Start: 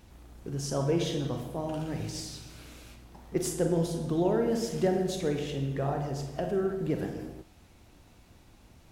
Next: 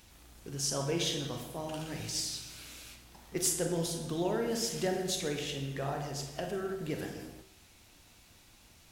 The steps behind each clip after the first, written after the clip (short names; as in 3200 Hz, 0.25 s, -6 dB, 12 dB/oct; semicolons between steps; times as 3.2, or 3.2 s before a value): tilt shelf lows -6.5 dB, about 1400 Hz; de-hum 63.87 Hz, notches 35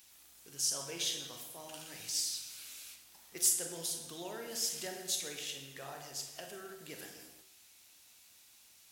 tilt +3.5 dB/oct; gain -8.5 dB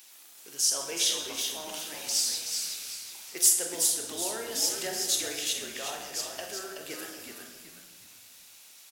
HPF 300 Hz 12 dB/oct; on a send: frequency-shifting echo 0.375 s, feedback 35%, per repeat -68 Hz, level -5.5 dB; on the sum: gain +7.5 dB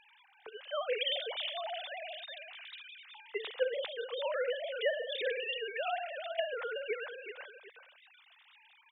sine-wave speech; gain -6 dB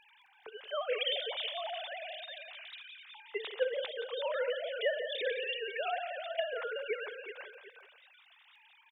crackle 11/s -61 dBFS; on a send: echo 0.173 s -11.5 dB